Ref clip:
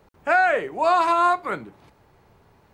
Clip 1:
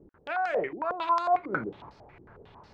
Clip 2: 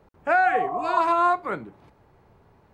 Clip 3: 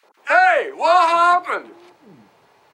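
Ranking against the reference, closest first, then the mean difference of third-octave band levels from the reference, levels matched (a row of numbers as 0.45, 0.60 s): 2, 3, 1; 2.5, 4.5, 6.5 dB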